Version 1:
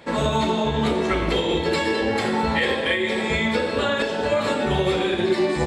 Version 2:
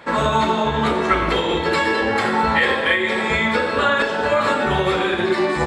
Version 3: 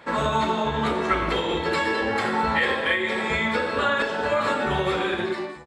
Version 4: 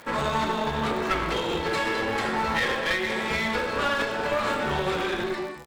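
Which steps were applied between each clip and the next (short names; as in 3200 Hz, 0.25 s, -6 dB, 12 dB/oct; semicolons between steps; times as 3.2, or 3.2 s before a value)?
bell 1300 Hz +10 dB 1.3 oct
ending faded out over 0.51 s; gain -5 dB
one-sided clip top -29.5 dBFS; crackle 94/s -35 dBFS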